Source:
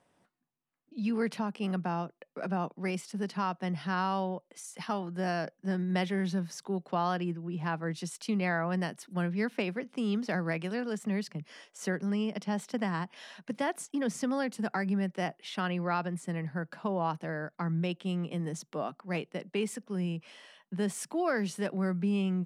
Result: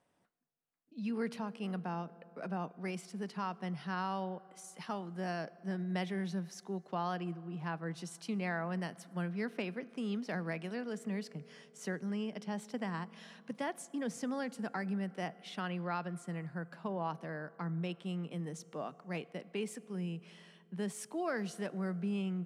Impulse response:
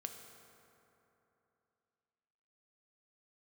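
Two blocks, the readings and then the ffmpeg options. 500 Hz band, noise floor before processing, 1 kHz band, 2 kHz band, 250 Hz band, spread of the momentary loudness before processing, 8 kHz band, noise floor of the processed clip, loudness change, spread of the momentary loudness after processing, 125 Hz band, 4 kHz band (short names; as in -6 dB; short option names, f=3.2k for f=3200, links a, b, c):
-6.0 dB, -76 dBFS, -6.0 dB, -6.5 dB, -6.0 dB, 7 LU, -6.0 dB, -63 dBFS, -6.0 dB, 7 LU, -6.0 dB, -6.0 dB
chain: -filter_complex "[0:a]asplit=2[a][b];[1:a]atrim=start_sample=2205[c];[b][c]afir=irnorm=-1:irlink=0,volume=-9dB[d];[a][d]amix=inputs=2:normalize=0,volume=-8dB"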